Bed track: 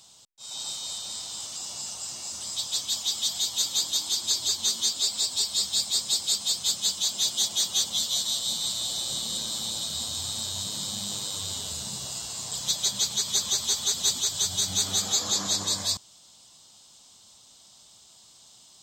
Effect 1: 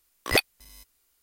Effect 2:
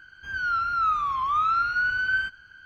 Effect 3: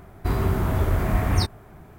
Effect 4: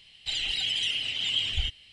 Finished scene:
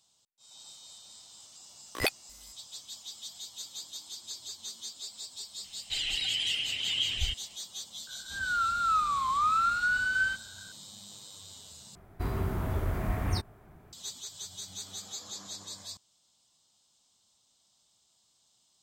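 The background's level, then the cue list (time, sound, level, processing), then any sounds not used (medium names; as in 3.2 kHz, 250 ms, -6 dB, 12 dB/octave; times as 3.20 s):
bed track -16 dB
1.69 s: add 1 -7 dB
5.64 s: add 4 -2.5 dB
8.07 s: add 2 -3.5 dB + small resonant body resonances 220/560/790 Hz, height 8 dB
11.95 s: replace with 3 -9 dB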